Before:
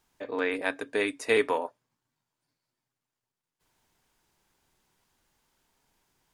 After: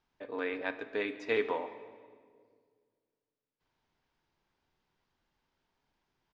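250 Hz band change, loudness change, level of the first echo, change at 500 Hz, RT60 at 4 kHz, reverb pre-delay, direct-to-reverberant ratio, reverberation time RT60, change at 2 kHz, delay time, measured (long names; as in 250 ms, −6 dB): −5.5 dB, −6.5 dB, −20.5 dB, −6.0 dB, 1.4 s, 8 ms, 10.5 dB, 1.8 s, −6.5 dB, 138 ms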